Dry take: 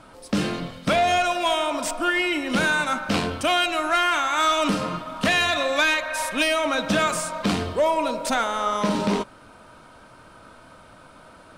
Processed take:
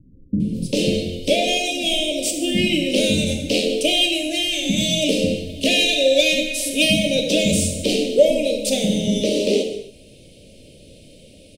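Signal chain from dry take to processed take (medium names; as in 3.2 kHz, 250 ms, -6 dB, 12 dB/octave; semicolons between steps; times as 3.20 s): elliptic band-stop 510–2700 Hz, stop band 70 dB; dynamic bell 700 Hz, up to +7 dB, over -36 dBFS, Q 0.79; bands offset in time lows, highs 400 ms, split 250 Hz; gated-style reverb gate 300 ms falling, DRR 3.5 dB; trim +6.5 dB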